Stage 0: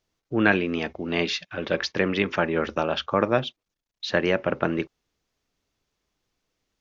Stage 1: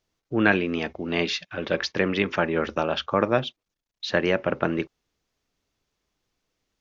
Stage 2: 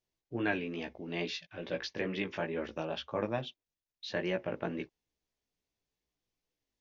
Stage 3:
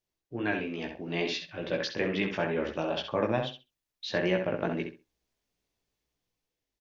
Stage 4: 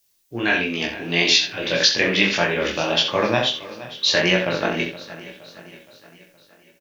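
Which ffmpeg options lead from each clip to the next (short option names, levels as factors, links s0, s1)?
-af anull
-af "equalizer=f=1300:t=o:w=0.38:g=-8,flanger=delay=16:depth=2.8:speed=2.3,volume=0.398"
-filter_complex "[0:a]asplit=2[s0][s1];[s1]adelay=66,lowpass=f=4000:p=1,volume=0.501,asplit=2[s2][s3];[s3]adelay=66,lowpass=f=4000:p=1,volume=0.2,asplit=2[s4][s5];[s5]adelay=66,lowpass=f=4000:p=1,volume=0.2[s6];[s2][s4][s6]amix=inputs=3:normalize=0[s7];[s0][s7]amix=inputs=2:normalize=0,dynaudnorm=f=130:g=13:m=1.78"
-af "aecho=1:1:469|938|1407|1876|2345:0.141|0.0749|0.0397|0.021|0.0111,flanger=delay=22.5:depth=3.8:speed=1.6,crystalizer=i=8:c=0,volume=2.82"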